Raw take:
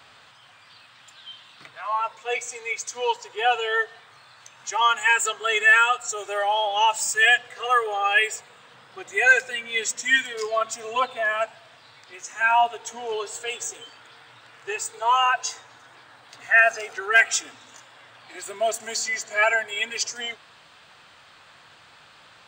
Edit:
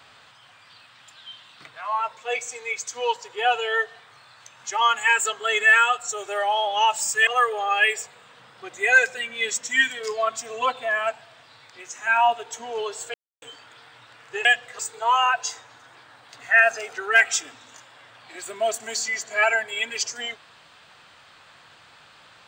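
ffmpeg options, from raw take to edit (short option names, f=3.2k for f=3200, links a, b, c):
-filter_complex "[0:a]asplit=6[a][b][c][d][e][f];[a]atrim=end=7.272[g];[b]atrim=start=7.608:end=13.48,asetpts=PTS-STARTPTS,afade=t=out:st=5.868:d=0.004:c=hsin[h];[c]atrim=start=13.48:end=13.76,asetpts=PTS-STARTPTS,volume=0[i];[d]atrim=start=13.76:end=14.792,asetpts=PTS-STARTPTS,afade=t=in:d=0.004:c=hsin[j];[e]atrim=start=7.268:end=7.612[k];[f]atrim=start=14.788[l];[h][i][j]concat=n=3:v=0:a=1[m];[g][m]acrossfade=d=0.004:c1=hsin:c2=hsin[n];[n][k]acrossfade=d=0.004:c1=hsin:c2=hsin[o];[o][l]acrossfade=d=0.004:c1=hsin:c2=hsin"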